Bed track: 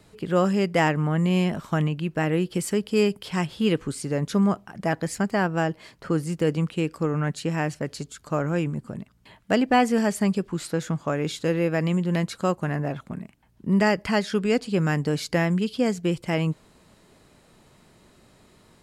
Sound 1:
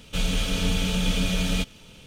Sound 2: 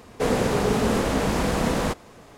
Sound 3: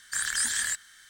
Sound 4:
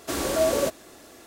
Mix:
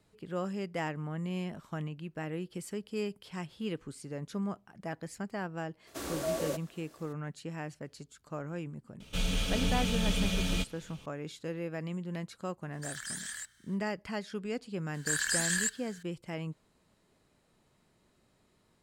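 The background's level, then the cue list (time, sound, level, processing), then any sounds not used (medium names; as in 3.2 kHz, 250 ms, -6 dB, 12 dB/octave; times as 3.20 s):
bed track -14 dB
5.87 s: add 4 -11 dB
9.00 s: add 1 -6 dB
12.70 s: add 3 -12.5 dB, fades 0.05 s
14.94 s: add 3 -3.5 dB + rippled EQ curve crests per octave 1.4, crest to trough 7 dB
not used: 2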